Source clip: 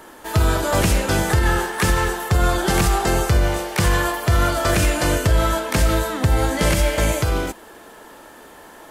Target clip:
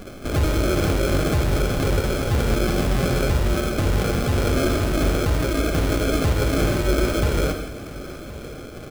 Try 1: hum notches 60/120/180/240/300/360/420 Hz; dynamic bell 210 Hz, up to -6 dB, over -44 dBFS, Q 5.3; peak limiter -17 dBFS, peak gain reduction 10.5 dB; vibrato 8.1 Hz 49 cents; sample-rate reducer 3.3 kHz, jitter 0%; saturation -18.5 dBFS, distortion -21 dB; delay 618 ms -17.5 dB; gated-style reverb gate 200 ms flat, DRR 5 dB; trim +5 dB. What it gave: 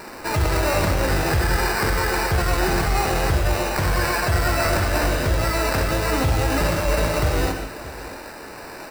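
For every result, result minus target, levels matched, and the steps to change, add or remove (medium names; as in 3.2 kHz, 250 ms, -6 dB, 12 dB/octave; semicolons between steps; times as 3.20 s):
echo 453 ms early; sample-rate reducer: distortion -6 dB
change: delay 1071 ms -17.5 dB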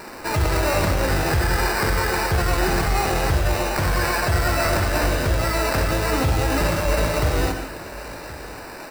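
sample-rate reducer: distortion -6 dB
change: sample-rate reducer 940 Hz, jitter 0%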